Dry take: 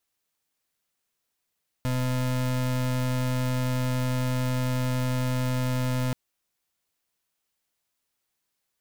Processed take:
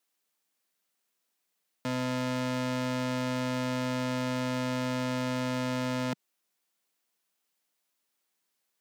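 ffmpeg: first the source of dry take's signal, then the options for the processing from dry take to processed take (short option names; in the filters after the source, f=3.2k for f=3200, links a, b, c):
-f lavfi -i "aevalsrc='0.0501*(2*lt(mod(127*t,1),0.33)-1)':d=4.28:s=44100"
-filter_complex "[0:a]highpass=f=170:w=0.5412,highpass=f=170:w=1.3066,acrossover=split=7400[a][b];[b]acompressor=threshold=-52dB:ratio=4:attack=1:release=60[c];[a][c]amix=inputs=2:normalize=0"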